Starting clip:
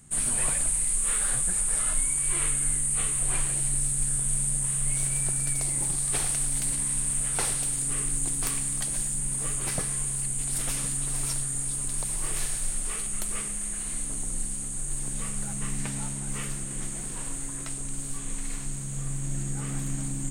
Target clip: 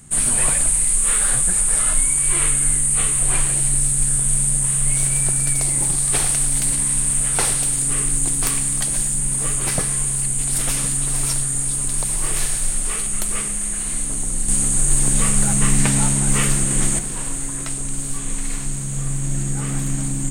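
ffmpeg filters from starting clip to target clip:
ffmpeg -i in.wav -filter_complex "[0:a]asettb=1/sr,asplit=3[link_01][link_02][link_03];[link_01]atrim=end=14.484[link_04];[link_02]atrim=start=14.48:end=16.99,asetpts=PTS-STARTPTS,afade=type=in:duration=0.004:curve=qsin,afade=type=out:start_time=2.506:duration=0.004:curve=qsin,acontrast=72[link_05];[link_03]atrim=start=16.986[link_06];[link_04][link_05]acrossfade=duration=0.004:curve1=hsin:curve2=qsin[link_07];[link_07][link_06]acrossfade=duration=0.004:curve1=qsin:curve2=hsin,volume=8.5dB" out.wav

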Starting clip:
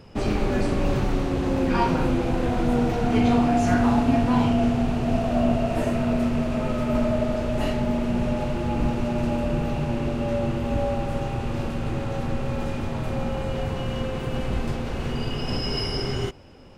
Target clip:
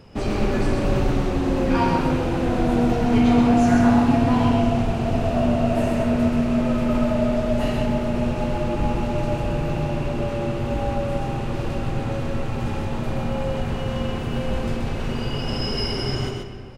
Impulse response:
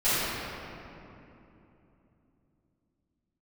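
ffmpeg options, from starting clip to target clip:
-filter_complex "[0:a]aecho=1:1:129:0.631,asplit=2[link_01][link_02];[1:a]atrim=start_sample=2205,afade=type=out:start_time=0.44:duration=0.01,atrim=end_sample=19845,adelay=75[link_03];[link_02][link_03]afir=irnorm=-1:irlink=0,volume=-24dB[link_04];[link_01][link_04]amix=inputs=2:normalize=0"

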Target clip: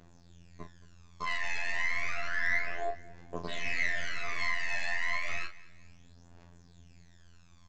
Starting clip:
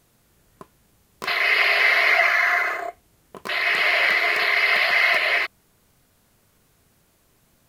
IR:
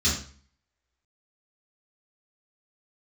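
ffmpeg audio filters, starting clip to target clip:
-filter_complex "[0:a]aeval=exprs='if(lt(val(0),0),0.447*val(0),val(0))':channel_layout=same,asplit=2[link_01][link_02];[link_02]acompressor=threshold=-31dB:ratio=6,volume=1dB[link_03];[link_01][link_03]amix=inputs=2:normalize=0,alimiter=limit=-15.5dB:level=0:latency=1:release=477,afftfilt=real='hypot(re,im)*cos(PI*b)':imag='0':win_size=2048:overlap=0.75,aresample=16000,asoftclip=type=tanh:threshold=-21dB,aresample=44100,adynamicequalizer=threshold=0.00316:dfrequency=520:dqfactor=0.78:tfrequency=520:tqfactor=0.78:attack=5:release=100:ratio=0.375:range=1.5:mode=boostabove:tftype=bell,aphaser=in_gain=1:out_gain=1:delay=1.2:decay=0.68:speed=0.31:type=triangular,asplit=2[link_04][link_05];[link_05]adelay=36,volume=-8dB[link_06];[link_04][link_06]amix=inputs=2:normalize=0,aecho=1:1:220|440|660:0.0944|0.0368|0.0144,volume=-4dB"

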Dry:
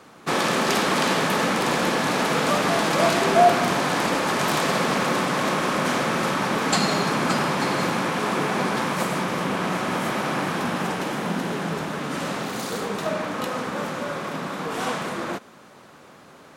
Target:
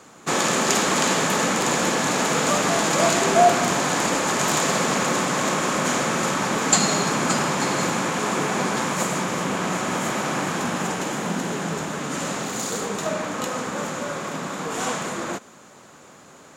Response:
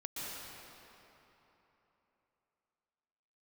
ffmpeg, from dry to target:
-af "equalizer=frequency=7000:width=3.6:gain=14"

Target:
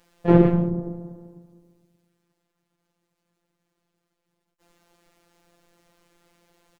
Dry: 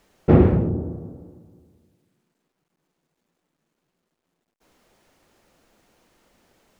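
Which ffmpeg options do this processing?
ffmpeg -i in.wav -filter_complex "[0:a]asplit=3[link_01][link_02][link_03];[link_02]asetrate=29433,aresample=44100,atempo=1.49831,volume=-5dB[link_04];[link_03]asetrate=55563,aresample=44100,atempo=0.793701,volume=-3dB[link_05];[link_01][link_04][link_05]amix=inputs=3:normalize=0,afftfilt=real='hypot(re,im)*cos(PI*b)':imag='0':win_size=1024:overlap=0.75" out.wav

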